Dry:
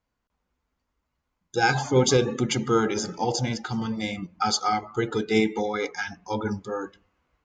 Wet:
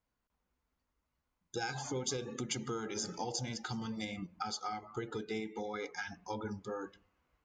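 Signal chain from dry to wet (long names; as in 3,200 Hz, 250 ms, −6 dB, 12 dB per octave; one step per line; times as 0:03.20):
downward compressor 6 to 1, threshold −31 dBFS, peak gain reduction 15.5 dB
0:01.57–0:04.05: high-shelf EQ 4,800 Hz +9.5 dB
level −5.5 dB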